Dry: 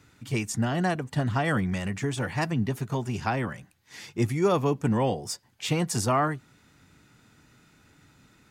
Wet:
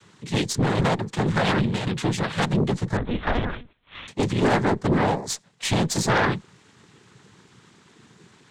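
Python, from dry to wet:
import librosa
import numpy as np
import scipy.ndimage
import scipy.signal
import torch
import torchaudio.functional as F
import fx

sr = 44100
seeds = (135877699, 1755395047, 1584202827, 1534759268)

y = fx.noise_vocoder(x, sr, seeds[0], bands=6)
y = fx.lpc_monotone(y, sr, seeds[1], pitch_hz=240.0, order=8, at=(2.97, 4.08))
y = fx.cheby_harmonics(y, sr, harmonics=(5, 6), levels_db=(-12, -15), full_scale_db=-10.5)
y = y * librosa.db_to_amplitude(-1.0)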